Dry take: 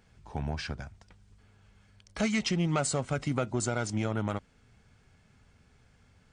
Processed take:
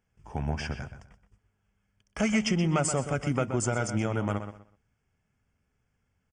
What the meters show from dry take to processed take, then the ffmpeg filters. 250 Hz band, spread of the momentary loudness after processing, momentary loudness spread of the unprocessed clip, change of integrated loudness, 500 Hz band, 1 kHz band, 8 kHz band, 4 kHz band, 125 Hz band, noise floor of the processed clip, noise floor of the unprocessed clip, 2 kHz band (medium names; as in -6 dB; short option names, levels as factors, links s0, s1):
+2.5 dB, 14 LU, 13 LU, +2.5 dB, +2.5 dB, +2.5 dB, +2.0 dB, 0.0 dB, +2.5 dB, -77 dBFS, -64 dBFS, +2.5 dB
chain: -filter_complex "[0:a]agate=range=0.158:threshold=0.00178:ratio=16:detection=peak,asuperstop=centerf=4000:order=4:qfactor=2.7,asplit=2[s0][s1];[s1]adelay=125,lowpass=f=3600:p=1,volume=0.355,asplit=2[s2][s3];[s3]adelay=125,lowpass=f=3600:p=1,volume=0.24,asplit=2[s4][s5];[s5]adelay=125,lowpass=f=3600:p=1,volume=0.24[s6];[s2][s4][s6]amix=inputs=3:normalize=0[s7];[s0][s7]amix=inputs=2:normalize=0,volume=1.26"